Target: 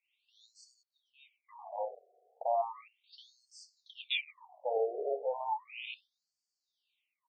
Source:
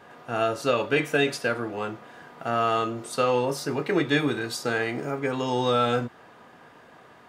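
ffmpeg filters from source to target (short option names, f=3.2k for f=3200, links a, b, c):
-filter_complex "[0:a]asettb=1/sr,asplit=3[a][b][c];[a]atrim=end=0.834[d];[b]atrim=start=0.83:end=1.49,asetpts=PTS-STARTPTS,afade=t=in:d=0.004:c=qsin,afade=t=out:st=0.656:d=0.004:c=qsin,asplit=3[e][f][g];[e]bandpass=f=270:t=q:w=8,volume=0dB[h];[f]bandpass=f=2.29k:t=q:w=8,volume=-6dB[i];[g]bandpass=f=3.01k:t=q:w=8,volume=-9dB[j];[h][i][j]amix=inputs=3:normalize=0[k];[c]atrim=start=1.486[l];[d][k]acrossfade=d=0.004:c1=hsin:c2=qsin[m];[m][l]acrossfade=d=0.004:c1=qsin:c2=hsin,asplit=2[n][o];[o]adelay=1224,volume=-27dB,highshelf=f=4k:g=-27.6[p];[n][p]amix=inputs=2:normalize=0,afwtdn=0.0251,asuperstop=centerf=1500:order=8:qfactor=1.1,afftfilt=real='re*between(b*sr/1024,520*pow(6200/520,0.5+0.5*sin(2*PI*0.35*pts/sr))/1.41,520*pow(6200/520,0.5+0.5*sin(2*PI*0.35*pts/sr))*1.41)':imag='im*between(b*sr/1024,520*pow(6200/520,0.5+0.5*sin(2*PI*0.35*pts/sr))/1.41,520*pow(6200/520,0.5+0.5*sin(2*PI*0.35*pts/sr))*1.41)':win_size=1024:overlap=0.75"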